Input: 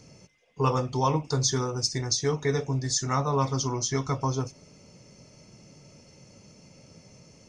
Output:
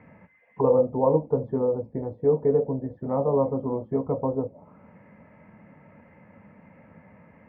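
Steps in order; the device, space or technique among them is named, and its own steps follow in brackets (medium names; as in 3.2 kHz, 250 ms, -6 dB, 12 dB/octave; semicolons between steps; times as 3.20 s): envelope filter bass rig (touch-sensitive low-pass 500–2000 Hz down, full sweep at -28.5 dBFS; cabinet simulation 69–2200 Hz, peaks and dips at 130 Hz -10 dB, 210 Hz +4 dB, 380 Hz -10 dB, 920 Hz +5 dB, 1.4 kHz -5 dB); trim +2.5 dB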